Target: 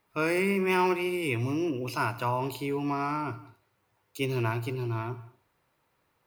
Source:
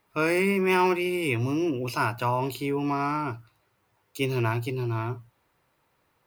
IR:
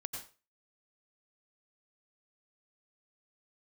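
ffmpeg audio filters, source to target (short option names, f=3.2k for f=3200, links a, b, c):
-filter_complex "[0:a]asplit=2[a][b];[1:a]atrim=start_sample=2205,adelay=76[c];[b][c]afir=irnorm=-1:irlink=0,volume=-15dB[d];[a][d]amix=inputs=2:normalize=0,volume=-3dB"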